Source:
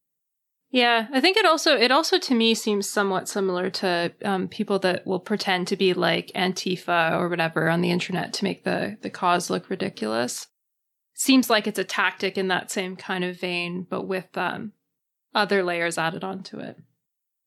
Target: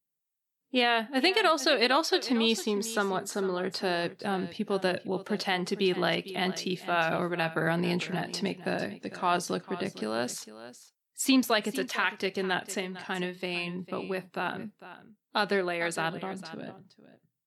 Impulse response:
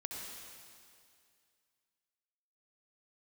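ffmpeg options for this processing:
-af "aecho=1:1:452:0.178,volume=-6dB"

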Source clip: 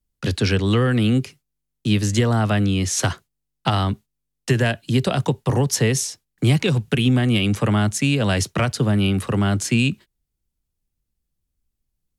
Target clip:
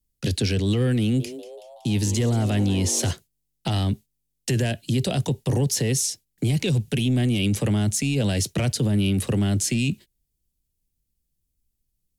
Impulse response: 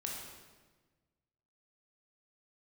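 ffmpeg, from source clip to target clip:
-filter_complex "[0:a]highshelf=frequency=6200:gain=6,acontrast=83,equalizer=frequency=1200:width=1.2:gain=-13,dynaudnorm=framelen=230:gausssize=21:maxgain=11.5dB,alimiter=limit=-8.5dB:level=0:latency=1:release=14,asettb=1/sr,asplit=3[link_01][link_02][link_03];[link_01]atrim=end=1.014[link_04];[link_02]atrim=start=1.01:end=3.11,asetpts=PTS-STARTPTS,afade=type=in:duration=0.004:curve=qsin,afade=type=out:start_time=2.096:duration=0.004:curve=qsin,asplit=7[link_05][link_06][link_07][link_08][link_09][link_10][link_11];[link_06]adelay=187,afreqshift=140,volume=-15dB[link_12];[link_07]adelay=374,afreqshift=280,volume=-19.7dB[link_13];[link_08]adelay=561,afreqshift=420,volume=-24.5dB[link_14];[link_09]adelay=748,afreqshift=560,volume=-29.2dB[link_15];[link_10]adelay=935,afreqshift=700,volume=-33.9dB[link_16];[link_11]adelay=1122,afreqshift=840,volume=-38.7dB[link_17];[link_05][link_12][link_13][link_14][link_15][link_16][link_17]amix=inputs=7:normalize=0,atrim=end_sample=92610[link_18];[link_03]atrim=start=3.106[link_19];[link_04][link_18]acrossfade=duration=0.004:curve1=hsin:curve2=qsin[link_20];[link_20][link_19]acrossfade=duration=0.004:curve1=qsin:curve2=hsin,volume=-7dB"

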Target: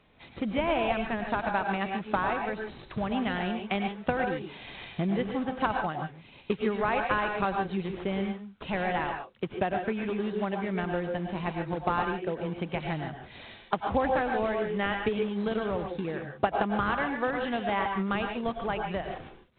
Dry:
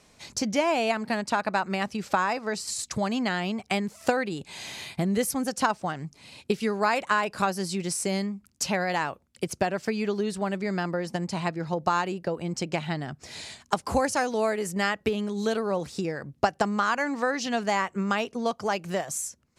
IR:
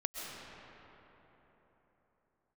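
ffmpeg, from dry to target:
-filter_complex "[0:a]asplit=2[link_01][link_02];[link_02]acrusher=samples=39:mix=1:aa=0.000001:lfo=1:lforange=62.4:lforate=3.7,volume=-9.5dB[link_03];[link_01][link_03]amix=inputs=2:normalize=0[link_04];[1:a]atrim=start_sample=2205,afade=type=out:start_time=0.24:duration=0.01,atrim=end_sample=11025,asetrate=52920,aresample=44100[link_05];[link_04][link_05]afir=irnorm=-1:irlink=0,volume=-1.5dB" -ar 8000 -c:a pcm_alaw

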